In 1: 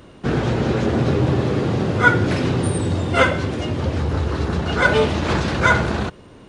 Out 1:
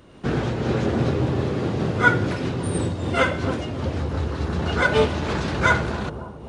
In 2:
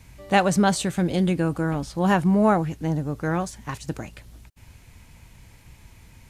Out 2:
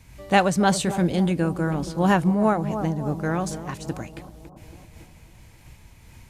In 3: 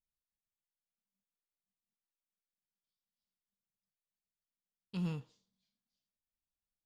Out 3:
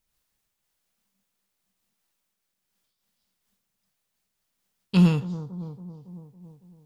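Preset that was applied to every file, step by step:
on a send: bucket-brigade delay 278 ms, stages 2,048, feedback 60%, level −12 dB
on the sum: amplitude modulation by smooth noise, depth 60%
loudness normalisation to −23 LKFS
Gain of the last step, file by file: −1.0, +3.5, +20.5 decibels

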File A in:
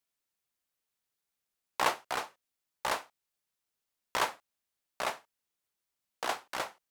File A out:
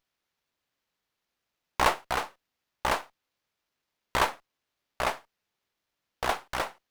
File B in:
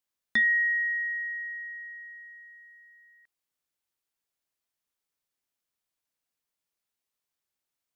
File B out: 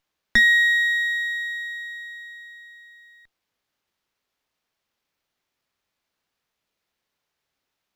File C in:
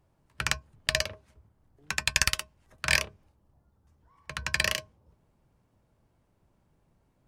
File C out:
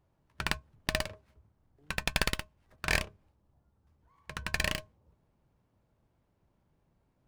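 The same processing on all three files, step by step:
windowed peak hold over 5 samples
normalise the peak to −9 dBFS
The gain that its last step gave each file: +5.5, +8.5, −3.5 decibels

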